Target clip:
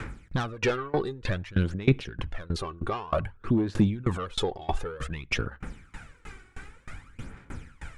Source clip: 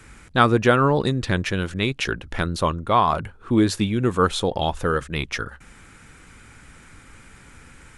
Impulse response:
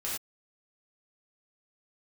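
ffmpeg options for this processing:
-filter_complex "[0:a]asplit=2[link_01][link_02];[link_02]aeval=exprs='0.841*sin(PI/2*3.55*val(0)/0.841)':channel_layout=same,volume=-8dB[link_03];[link_01][link_03]amix=inputs=2:normalize=0,alimiter=limit=-12dB:level=0:latency=1:release=48,aphaser=in_gain=1:out_gain=1:delay=2.7:decay=0.62:speed=0.54:type=sinusoidal,aemphasis=mode=reproduction:type=50kf,asplit=2[link_04][link_05];[1:a]atrim=start_sample=2205,lowpass=2600[link_06];[link_05][link_06]afir=irnorm=-1:irlink=0,volume=-25dB[link_07];[link_04][link_07]amix=inputs=2:normalize=0,aeval=exprs='val(0)*pow(10,-25*if(lt(mod(3.2*n/s,1),2*abs(3.2)/1000),1-mod(3.2*n/s,1)/(2*abs(3.2)/1000),(mod(3.2*n/s,1)-2*abs(3.2)/1000)/(1-2*abs(3.2)/1000))/20)':channel_layout=same,volume=-3.5dB"

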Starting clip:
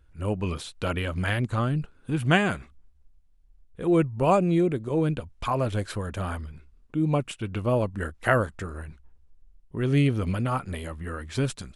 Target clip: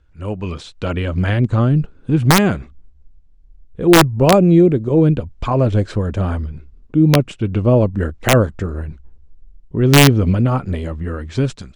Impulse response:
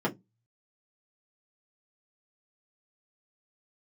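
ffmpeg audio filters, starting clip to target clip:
-filter_complex "[0:a]lowpass=frequency=7400:width=0.5412,lowpass=frequency=7400:width=1.3066,acrossover=split=610[link_01][link_02];[link_01]dynaudnorm=framelen=400:gausssize=5:maxgain=10dB[link_03];[link_03][link_02]amix=inputs=2:normalize=0,aeval=exprs='(mod(1.78*val(0)+1,2)-1)/1.78':channel_layout=same,volume=3dB"

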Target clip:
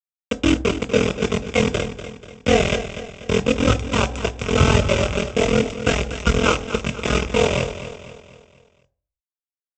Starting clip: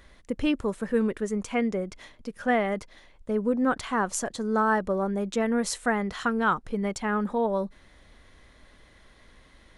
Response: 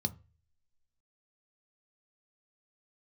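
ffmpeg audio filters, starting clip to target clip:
-filter_complex "[0:a]highpass=frequency=730:poles=1,highshelf=frequency=3200:gain=-11.5,asplit=2[link_01][link_02];[link_02]acrusher=samples=34:mix=1:aa=0.000001:lfo=1:lforange=20.4:lforate=1.2,volume=-3dB[link_03];[link_01][link_03]amix=inputs=2:normalize=0,aeval=exprs='val(0)*sin(2*PI*21*n/s)':channel_layout=same,aresample=16000,acrusher=bits=4:mix=0:aa=0.000001,aresample=44100,aecho=1:1:243|486|729|972|1215:0.251|0.116|0.0532|0.0244|0.0112[link_04];[1:a]atrim=start_sample=2205,afade=type=out:start_time=0.26:duration=0.01,atrim=end_sample=11907,asetrate=26019,aresample=44100[link_05];[link_04][link_05]afir=irnorm=-1:irlink=0,volume=4dB"

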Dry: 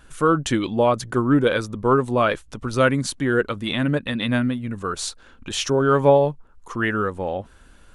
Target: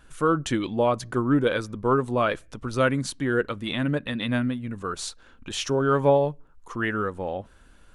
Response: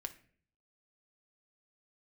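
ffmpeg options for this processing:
-filter_complex "[0:a]asplit=2[link_01][link_02];[1:a]atrim=start_sample=2205,afade=type=out:start_time=0.26:duration=0.01,atrim=end_sample=11907,lowpass=5400[link_03];[link_02][link_03]afir=irnorm=-1:irlink=0,volume=-14.5dB[link_04];[link_01][link_04]amix=inputs=2:normalize=0,volume=-5dB"

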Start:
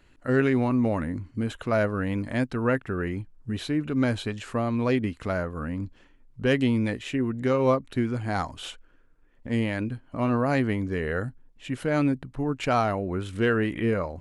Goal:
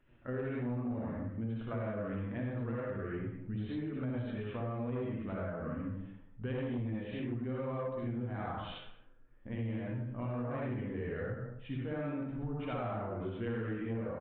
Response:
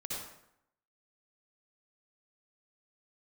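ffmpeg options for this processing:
-filter_complex "[1:a]atrim=start_sample=2205,afade=type=out:start_time=0.4:duration=0.01,atrim=end_sample=18081[link_01];[0:a][link_01]afir=irnorm=-1:irlink=0,flanger=delay=7.8:depth=2:regen=52:speed=1.2:shape=sinusoidal,highshelf=frequency=2700:gain=-8,aresample=8000,asoftclip=type=tanh:threshold=-18dB,aresample=44100,asplit=2[link_02][link_03];[link_03]adelay=160,lowpass=frequency=1900:poles=1,volume=-20dB,asplit=2[link_04][link_05];[link_05]adelay=160,lowpass=frequency=1900:poles=1,volume=0.33,asplit=2[link_06][link_07];[link_07]adelay=160,lowpass=frequency=1900:poles=1,volume=0.33[link_08];[link_02][link_04][link_06][link_08]amix=inputs=4:normalize=0,acompressor=threshold=-35dB:ratio=6"

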